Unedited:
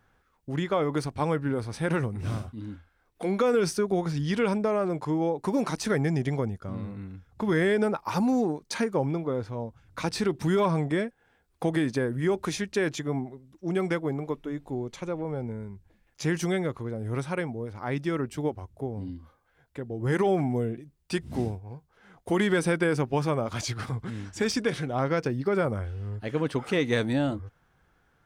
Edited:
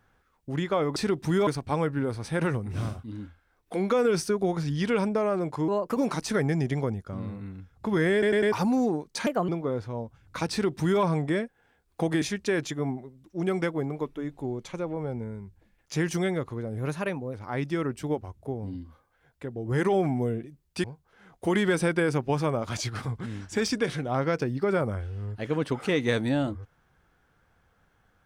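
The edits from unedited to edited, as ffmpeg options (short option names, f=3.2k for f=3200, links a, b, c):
-filter_complex "[0:a]asplit=15[a][b][c][d][e][f][g][h][i][j][k][l][m][n][o];[a]atrim=end=0.962[p];[b]atrim=start=10.128:end=10.642[q];[c]atrim=start=0.958:end=5.174[r];[d]atrim=start=5.17:end=5.52,asetpts=PTS-STARTPTS,asetrate=54243,aresample=44100[s];[e]atrim=start=5.516:end=7.782[t];[f]atrim=start=7.678:end=7.782[u];[g]atrim=start=7.678:end=7.782[v];[h]atrim=start=7.678:end=7.782[w];[i]atrim=start=8.078:end=8.824[x];[j]atrim=start=8.82:end=9.11,asetpts=PTS-STARTPTS,asetrate=57771,aresample=44100[y];[k]atrim=start=9.106:end=11.842[z];[l]atrim=start=12.498:end=17.064[aa];[m]atrim=start=17.06:end=17.68,asetpts=PTS-STARTPTS,asetrate=48510,aresample=44100,atrim=end_sample=24856,asetpts=PTS-STARTPTS[ab];[n]atrim=start=17.676:end=21.182[ac];[o]atrim=start=21.678[ad];[p][q]acrossfade=d=0.004:c1=hsin:c2=hsin[ae];[ae][r]acrossfade=d=0.004:c1=hsin:c2=hsin[af];[af][s]acrossfade=d=0.004:c1=hsin:c2=hsin[ag];[ag][t]acrossfade=d=0.004:c1=hsin:c2=hsin[ah];[ah][u]acrossfade=d=0.004:c1=hsin:c2=hsin[ai];[ai][v]acrossfade=d=0.004:c1=hsin:c2=hsin[aj];[aj][w]acrossfade=d=0.004:c1=hsin:c2=hsin[ak];[ak][x]acrossfade=d=0.004:c1=hsin:c2=hsin[al];[al][y]acrossfade=d=0.004:c1=hsin:c2=hsin[am];[am][z]acrossfade=d=0.004:c1=hsin:c2=hsin[an];[an][aa]acrossfade=d=0.004:c1=hsin:c2=hsin[ao];[ao][ab]acrossfade=d=0.004:c1=hsin:c2=hsin[ap];[ap][ac]acrossfade=d=0.004:c1=hsin:c2=hsin[aq];[aq][ad]acrossfade=d=0.004:c1=hsin:c2=hsin"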